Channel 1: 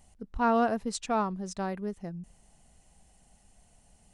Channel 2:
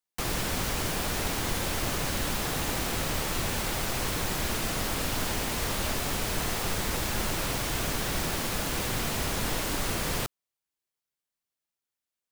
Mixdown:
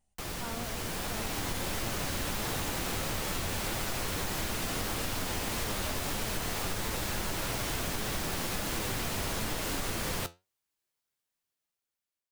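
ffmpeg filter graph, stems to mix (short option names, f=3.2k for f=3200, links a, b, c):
-filter_complex "[0:a]volume=-13dB[a];[1:a]dynaudnorm=f=580:g=5:m=11.5dB,volume=-3.5dB[b];[a][b]amix=inputs=2:normalize=0,flanger=delay=8.7:depth=3.1:regen=69:speed=1.6:shape=triangular,acompressor=threshold=-30dB:ratio=6"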